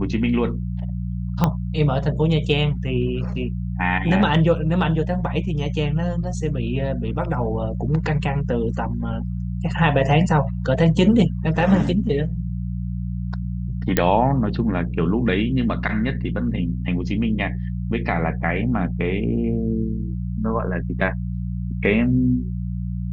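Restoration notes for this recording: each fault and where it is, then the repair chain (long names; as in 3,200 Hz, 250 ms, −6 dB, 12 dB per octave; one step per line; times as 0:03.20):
mains hum 60 Hz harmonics 3 −26 dBFS
0:01.44: click −5 dBFS
0:13.97: click −2 dBFS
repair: click removal
hum removal 60 Hz, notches 3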